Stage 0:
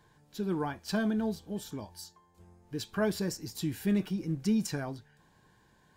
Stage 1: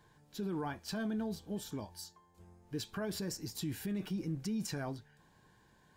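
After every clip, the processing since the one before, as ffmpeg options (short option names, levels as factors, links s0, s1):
-af "alimiter=level_in=1.68:limit=0.0631:level=0:latency=1:release=34,volume=0.596,volume=0.841"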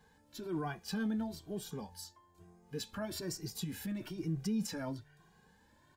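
-filter_complex "[0:a]asplit=2[s0][s1];[s1]adelay=2,afreqshift=1.1[s2];[s0][s2]amix=inputs=2:normalize=1,volume=1.41"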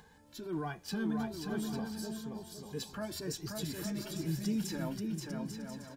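-filter_complex "[0:a]acompressor=mode=upward:threshold=0.002:ratio=2.5,asplit=2[s0][s1];[s1]aecho=0:1:530|848|1039|1153|1222:0.631|0.398|0.251|0.158|0.1[s2];[s0][s2]amix=inputs=2:normalize=0"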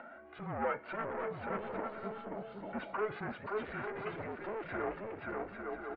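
-af "aresample=11025,asoftclip=type=tanh:threshold=0.0106,aresample=44100,highpass=f=530:t=q:w=0.5412,highpass=f=530:t=q:w=1.307,lowpass=f=2400:t=q:w=0.5176,lowpass=f=2400:t=q:w=0.7071,lowpass=f=2400:t=q:w=1.932,afreqshift=-220,volume=4.73"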